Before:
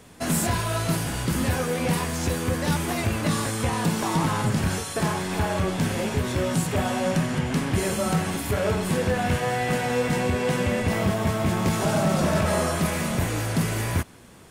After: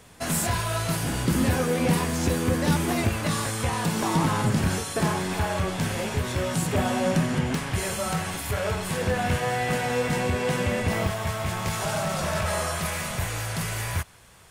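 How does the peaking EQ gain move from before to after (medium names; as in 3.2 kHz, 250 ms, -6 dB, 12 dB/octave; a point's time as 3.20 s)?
peaking EQ 270 Hz 1.5 oct
-6 dB
from 1.03 s +3.5 dB
from 3.09 s -5 dB
from 3.95 s +1 dB
from 5.33 s -5.5 dB
from 6.62 s +1 dB
from 7.55 s -10.5 dB
from 9.01 s -3.5 dB
from 11.07 s -15 dB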